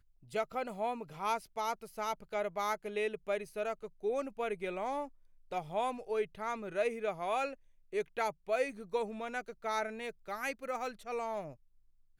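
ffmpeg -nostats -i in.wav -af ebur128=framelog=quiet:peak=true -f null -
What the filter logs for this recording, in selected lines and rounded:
Integrated loudness:
  I:         -37.2 LUFS
  Threshold: -47.3 LUFS
Loudness range:
  LRA:         1.6 LU
  Threshold: -57.1 LUFS
  LRA low:   -37.8 LUFS
  LRA high:  -36.2 LUFS
True peak:
  Peak:      -20.9 dBFS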